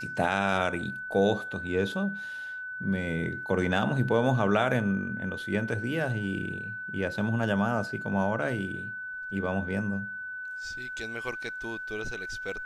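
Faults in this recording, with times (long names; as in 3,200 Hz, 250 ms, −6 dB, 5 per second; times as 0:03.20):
whistle 1,500 Hz −35 dBFS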